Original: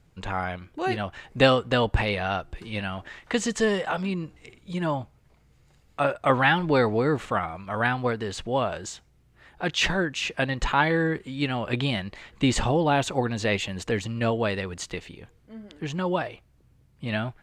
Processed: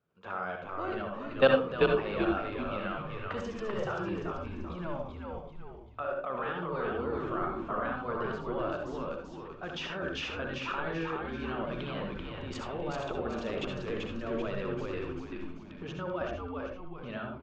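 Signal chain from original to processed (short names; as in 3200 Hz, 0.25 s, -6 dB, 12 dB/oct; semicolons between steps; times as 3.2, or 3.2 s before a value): high shelf 2300 Hz -8 dB; notch 500 Hz, Q 12; level quantiser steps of 18 dB; speaker cabinet 230–5300 Hz, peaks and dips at 290 Hz -8 dB, 490 Hz +5 dB, 820 Hz -6 dB, 1300 Hz +7 dB, 2000 Hz -8 dB, 4200 Hz -6 dB; frequency-shifting echo 0.387 s, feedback 44%, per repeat -96 Hz, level -3 dB; reverb RT60 0.35 s, pre-delay 61 ms, DRR 3 dB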